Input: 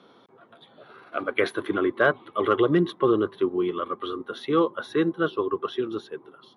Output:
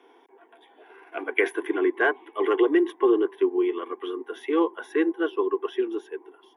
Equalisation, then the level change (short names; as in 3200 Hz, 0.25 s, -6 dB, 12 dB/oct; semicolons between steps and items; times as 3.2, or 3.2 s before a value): HPF 320 Hz 24 dB/oct; fixed phaser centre 850 Hz, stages 8; +3.5 dB